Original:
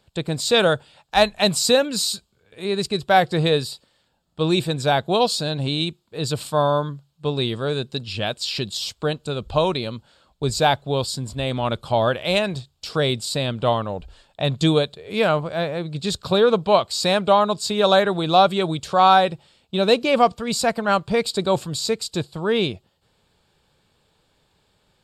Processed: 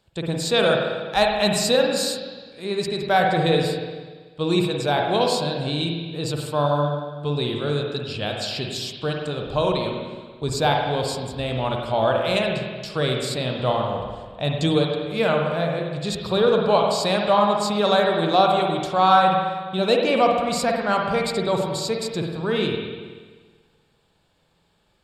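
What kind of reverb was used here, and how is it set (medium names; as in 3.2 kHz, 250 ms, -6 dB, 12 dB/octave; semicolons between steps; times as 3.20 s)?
spring tank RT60 1.5 s, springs 48/54 ms, chirp 55 ms, DRR 0.5 dB; trim -3.5 dB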